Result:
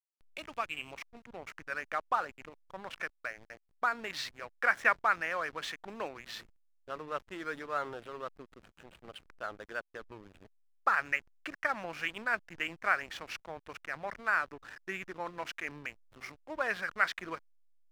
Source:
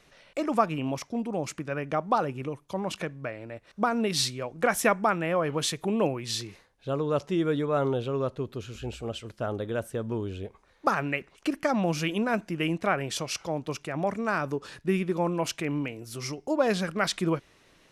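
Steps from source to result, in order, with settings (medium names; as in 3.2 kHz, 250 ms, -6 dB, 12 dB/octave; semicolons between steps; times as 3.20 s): band-pass sweep 3.8 kHz -> 1.7 kHz, 0.03–1.45 s; hysteresis with a dead band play -44.5 dBFS; trim +4 dB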